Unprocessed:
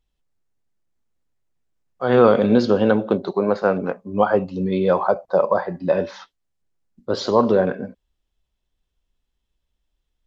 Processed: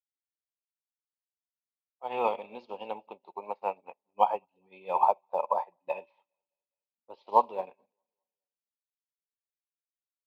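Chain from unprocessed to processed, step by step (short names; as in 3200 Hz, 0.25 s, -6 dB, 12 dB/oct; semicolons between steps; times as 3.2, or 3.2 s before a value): low-pass opened by the level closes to 1400 Hz, open at -13.5 dBFS; in parallel at -0.5 dB: limiter -12.5 dBFS, peak gain reduction 10.5 dB; on the sum: double band-pass 1500 Hz, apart 1.5 oct; on a send: feedback echo 0.207 s, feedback 55%, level -21 dB; on the sum: short-mantissa float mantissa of 6-bit; upward expander 2.5:1, over -47 dBFS; gain +5.5 dB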